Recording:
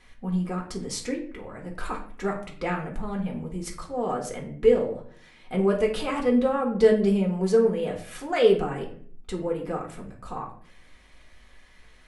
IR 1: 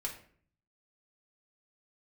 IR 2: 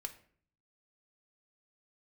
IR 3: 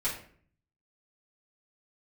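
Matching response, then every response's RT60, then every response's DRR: 1; 0.50 s, 0.55 s, 0.50 s; -1.0 dB, 6.0 dB, -9.5 dB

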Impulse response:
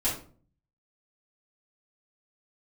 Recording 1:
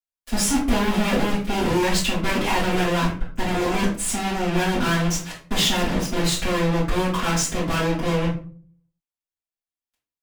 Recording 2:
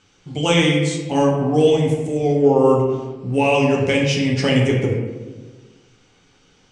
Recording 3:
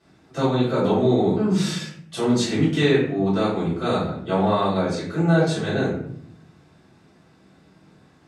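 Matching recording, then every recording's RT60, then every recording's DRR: 1; 0.45 s, 1.3 s, 0.60 s; -10.5 dB, -2.5 dB, -12.5 dB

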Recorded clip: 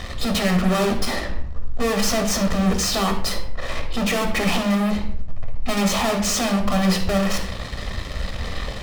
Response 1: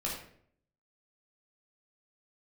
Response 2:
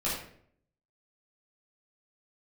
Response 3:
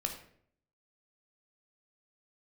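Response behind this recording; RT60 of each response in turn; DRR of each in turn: 3; 0.60 s, 0.60 s, 0.60 s; -4.5 dB, -9.5 dB, 3.5 dB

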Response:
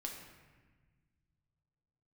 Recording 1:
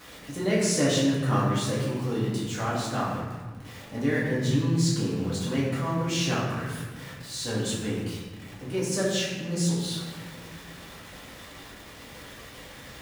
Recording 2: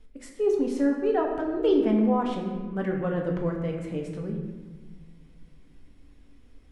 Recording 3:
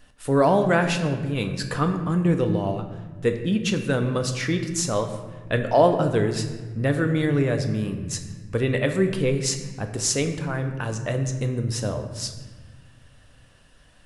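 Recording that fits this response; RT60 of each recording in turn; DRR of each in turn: 2; 1.3 s, 1.4 s, 1.4 s; -7.0 dB, 0.0 dB, 5.5 dB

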